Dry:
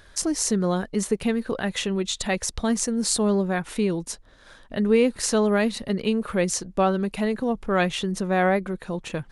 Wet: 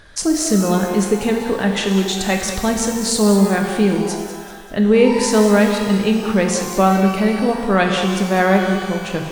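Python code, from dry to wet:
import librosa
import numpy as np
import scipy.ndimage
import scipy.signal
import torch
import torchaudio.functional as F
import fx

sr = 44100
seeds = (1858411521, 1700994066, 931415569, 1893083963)

p1 = fx.high_shelf(x, sr, hz=8700.0, db=-7.5)
p2 = p1 + fx.echo_feedback(p1, sr, ms=194, feedback_pct=41, wet_db=-11, dry=0)
p3 = fx.rev_shimmer(p2, sr, seeds[0], rt60_s=1.3, semitones=12, shimmer_db=-8, drr_db=4.0)
y = F.gain(torch.from_numpy(p3), 5.5).numpy()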